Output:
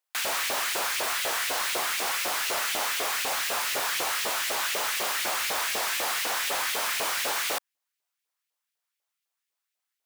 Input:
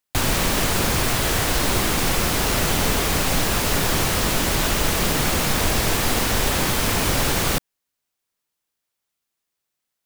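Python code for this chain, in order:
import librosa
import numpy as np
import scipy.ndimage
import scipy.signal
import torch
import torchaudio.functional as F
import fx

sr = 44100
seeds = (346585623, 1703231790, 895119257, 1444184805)

y = fx.filter_lfo_highpass(x, sr, shape='saw_up', hz=4.0, low_hz=480.0, high_hz=2600.0, q=1.6)
y = 10.0 ** (-16.5 / 20.0) * np.tanh(y / 10.0 ** (-16.5 / 20.0))
y = y * librosa.db_to_amplitude(-4.5)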